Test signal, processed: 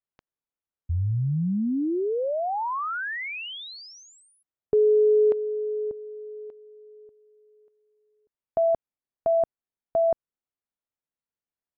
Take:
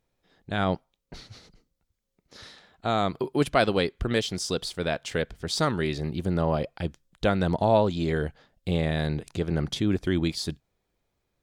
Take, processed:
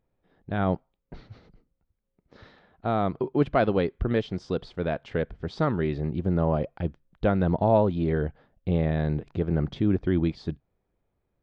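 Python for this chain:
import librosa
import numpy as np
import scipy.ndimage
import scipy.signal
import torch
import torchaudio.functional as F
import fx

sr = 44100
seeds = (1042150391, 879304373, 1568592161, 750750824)

y = fx.spacing_loss(x, sr, db_at_10k=41)
y = F.gain(torch.from_numpy(y), 2.5).numpy()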